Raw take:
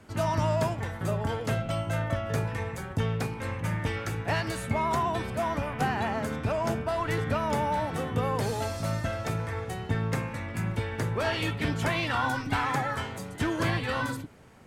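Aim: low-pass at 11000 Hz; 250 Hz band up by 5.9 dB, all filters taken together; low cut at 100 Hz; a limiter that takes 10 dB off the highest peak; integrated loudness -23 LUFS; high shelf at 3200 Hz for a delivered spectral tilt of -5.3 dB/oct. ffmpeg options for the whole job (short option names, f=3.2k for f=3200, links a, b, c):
-af "highpass=100,lowpass=11k,equalizer=f=250:t=o:g=8,highshelf=f=3.2k:g=7.5,volume=7.5dB,alimiter=limit=-13dB:level=0:latency=1"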